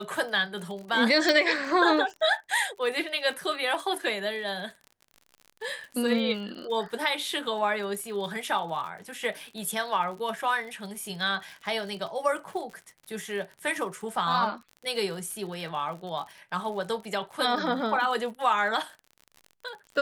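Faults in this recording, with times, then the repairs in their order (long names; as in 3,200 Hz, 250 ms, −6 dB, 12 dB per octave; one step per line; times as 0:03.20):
surface crackle 57 per second −37 dBFS
0:01.29: click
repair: click removal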